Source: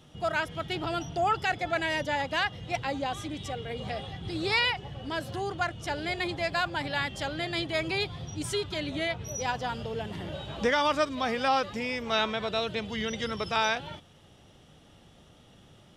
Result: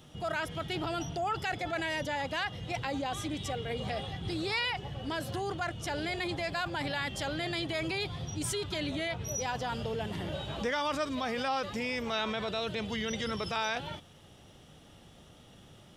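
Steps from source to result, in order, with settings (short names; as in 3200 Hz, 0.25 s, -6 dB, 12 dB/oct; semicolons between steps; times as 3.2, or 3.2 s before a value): high shelf 10000 Hz +6.5 dB; in parallel at +1 dB: negative-ratio compressor -34 dBFS, ratio -1; on the sum: gain -8 dB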